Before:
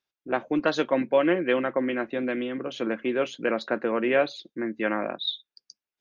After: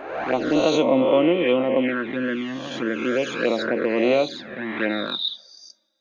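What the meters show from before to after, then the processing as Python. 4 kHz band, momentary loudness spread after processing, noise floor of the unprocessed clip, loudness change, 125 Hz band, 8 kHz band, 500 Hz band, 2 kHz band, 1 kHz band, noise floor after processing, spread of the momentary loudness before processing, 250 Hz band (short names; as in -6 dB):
+6.0 dB, 10 LU, under -85 dBFS, +4.5 dB, +6.0 dB, n/a, +4.5 dB, +3.0 dB, +3.0 dB, -51 dBFS, 8 LU, +5.0 dB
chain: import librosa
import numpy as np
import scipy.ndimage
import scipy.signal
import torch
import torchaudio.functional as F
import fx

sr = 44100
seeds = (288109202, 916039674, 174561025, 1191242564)

y = fx.spec_swells(x, sr, rise_s=1.15)
y = fx.rev_double_slope(y, sr, seeds[0], early_s=0.23, late_s=1.7, knee_db=-22, drr_db=13.5)
y = fx.env_flanger(y, sr, rest_ms=3.8, full_db=-18.0)
y = F.gain(torch.from_numpy(y), 3.5).numpy()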